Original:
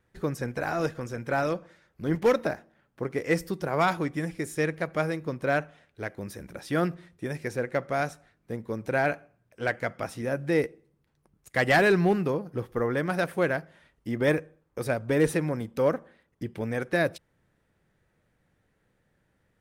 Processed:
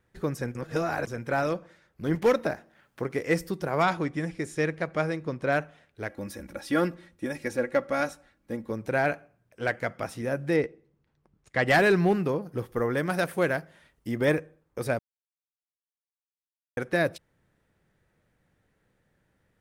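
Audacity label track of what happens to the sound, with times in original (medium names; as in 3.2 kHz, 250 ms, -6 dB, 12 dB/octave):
0.550000	1.070000	reverse
2.040000	3.250000	tape noise reduction on one side only encoder only
3.820000	5.520000	low-pass 8 kHz
6.090000	8.710000	comb 3.6 ms
10.560000	11.680000	distance through air 93 m
12.420000	14.250000	treble shelf 5.7 kHz +6.5 dB
14.990000	16.770000	mute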